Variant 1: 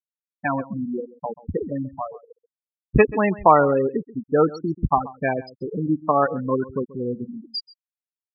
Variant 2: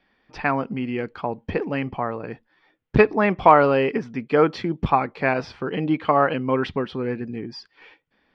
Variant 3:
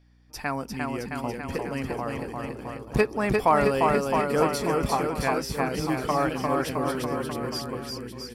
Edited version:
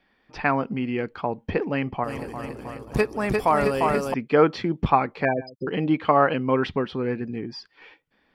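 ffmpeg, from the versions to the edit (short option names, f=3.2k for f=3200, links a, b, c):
-filter_complex "[1:a]asplit=3[a][b][c];[a]atrim=end=2.042[d];[2:a]atrim=start=2.038:end=4.142[e];[b]atrim=start=4.138:end=5.252[f];[0:a]atrim=start=5.248:end=5.672[g];[c]atrim=start=5.668[h];[d][e]acrossfade=d=0.004:c1=hsin:c2=hsin[i];[i][f]acrossfade=d=0.004:c1=hsin:c2=hsin[j];[j][g]acrossfade=d=0.004:c1=hsin:c2=hsin[k];[k][h]acrossfade=d=0.004:c1=hsin:c2=hsin"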